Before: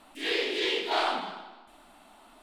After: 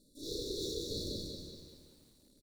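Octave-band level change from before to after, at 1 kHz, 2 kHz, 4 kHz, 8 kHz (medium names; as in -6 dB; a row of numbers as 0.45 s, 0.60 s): under -40 dB, under -40 dB, -10.0 dB, +2.5 dB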